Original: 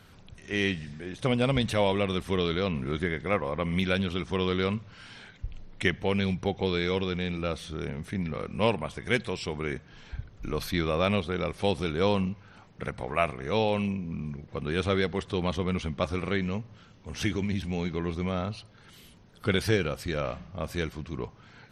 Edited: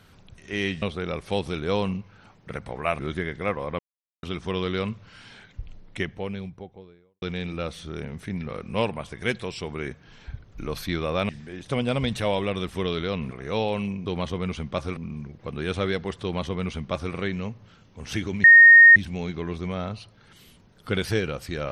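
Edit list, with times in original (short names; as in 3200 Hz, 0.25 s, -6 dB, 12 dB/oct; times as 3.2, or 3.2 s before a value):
0.82–2.84 swap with 11.14–13.31
3.64–4.08 mute
5.35–7.07 studio fade out
15.32–16.23 copy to 14.06
17.53 add tone 1850 Hz -7 dBFS 0.52 s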